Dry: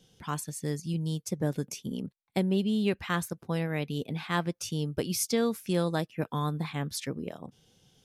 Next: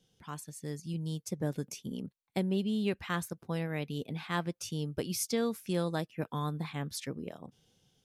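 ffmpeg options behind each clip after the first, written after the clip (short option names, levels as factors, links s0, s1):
-af "dynaudnorm=f=320:g=5:m=1.78,volume=0.355"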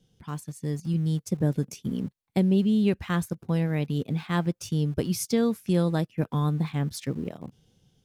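-filter_complex "[0:a]lowshelf=f=320:g=10.5,asplit=2[s0][s1];[s1]aeval=exprs='val(0)*gte(abs(val(0)),0.0119)':c=same,volume=0.299[s2];[s0][s2]amix=inputs=2:normalize=0"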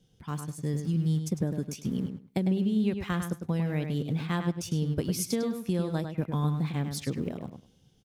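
-filter_complex "[0:a]acompressor=threshold=0.0562:ratio=6,asplit=2[s0][s1];[s1]adelay=102,lowpass=f=5000:p=1,volume=0.447,asplit=2[s2][s3];[s3]adelay=102,lowpass=f=5000:p=1,volume=0.18,asplit=2[s4][s5];[s5]adelay=102,lowpass=f=5000:p=1,volume=0.18[s6];[s0][s2][s4][s6]amix=inputs=4:normalize=0"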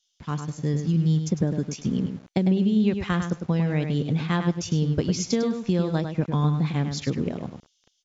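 -filter_complex "[0:a]acrossover=split=3000[s0][s1];[s0]aeval=exprs='val(0)*gte(abs(val(0)),0.00251)':c=same[s2];[s2][s1]amix=inputs=2:normalize=0,volume=1.88" -ar 24000 -c:a mp2 -b:a 96k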